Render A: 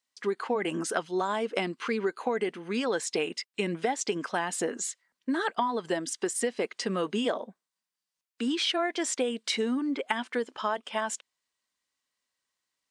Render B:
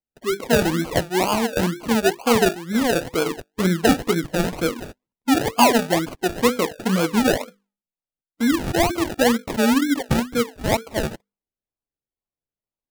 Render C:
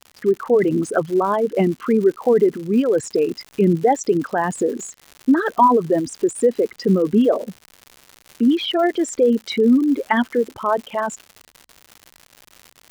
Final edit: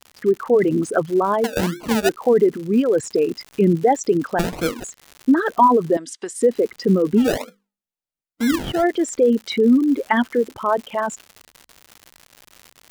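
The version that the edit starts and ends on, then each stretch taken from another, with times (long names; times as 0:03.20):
C
0:01.44–0:02.09: punch in from B
0:04.39–0:04.84: punch in from B
0:05.97–0:06.42: punch in from A
0:07.27–0:08.73: punch in from B, crossfade 0.24 s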